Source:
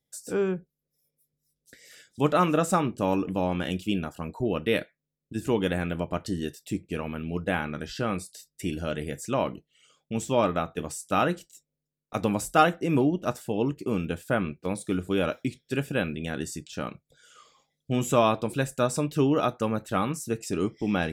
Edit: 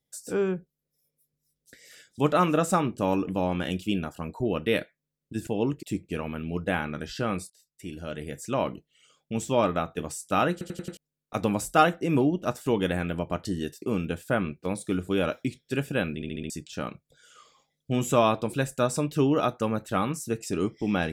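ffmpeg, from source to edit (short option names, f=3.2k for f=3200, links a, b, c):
-filter_complex "[0:a]asplit=16[a][b][c][d][e][f][g][h][i][j][k][l][m][n][o][p];[a]atrim=end=5.472[q];[b]atrim=start=13.458:end=13.822[r];[c]atrim=start=6.628:end=8.3,asetpts=PTS-STARTPTS,afade=t=out:st=1.668:d=0.004:c=hsin:silence=0.11885[s];[d]atrim=start=8.3:end=11.412,asetpts=PTS-STARTPTS,afade=t=in:d=1.17:silence=0.11885[t];[e]atrim=start=11.318:end=11.412[u];[f]atrim=start=11.318:end=11.412[v];[g]atrim=start=11.318:end=11.412[w];[h]atrim=start=11.318:end=11.412[x];[i]atrim=start=11.768:end=13.462[y];[j]atrim=start=5.468:end=6.632[z];[k]atrim=start=13.818:end=16.222[aa];[l]atrim=start=16.148:end=16.222[ab];[m]atrim=start=16.148:end=16.222[ac];[n]atrim=start=16.148:end=16.222[ad];[o]atrim=start=16.148:end=16.222[ae];[p]atrim=start=16.498[af];[q][r]acrossfade=d=0.004:c1=hsin:c2=hsin[ag];[s][t]concat=n=2:v=0:a=1[ah];[ag][ah]acrossfade=d=0.004:c1=hsin:c2=hsin[ai];[ai][u]acrossfade=d=0.004:c1=hsin:c2=hsin[aj];[aj][v]acrossfade=d=0.004:c1=hsin:c2=hsin[ak];[ak][w]acrossfade=d=0.004:c1=hsin:c2=hsin[al];[al][x]acrossfade=d=0.004:c1=hsin:c2=hsin[am];[am][y]acrossfade=d=0.004:c1=hsin:c2=hsin[an];[an][z]acrossfade=d=0.004:c1=hsin:c2=hsin[ao];[ao][aa]acrossfade=d=0.004:c1=hsin:c2=hsin[ap];[ap][ab]acrossfade=d=0.004:c1=hsin:c2=hsin[aq];[aq][ac]acrossfade=d=0.004:c1=hsin:c2=hsin[ar];[ar][ad]acrossfade=d=0.004:c1=hsin:c2=hsin[as];[as][ae]acrossfade=d=0.004:c1=hsin:c2=hsin[at];[at][af]acrossfade=d=0.004:c1=hsin:c2=hsin"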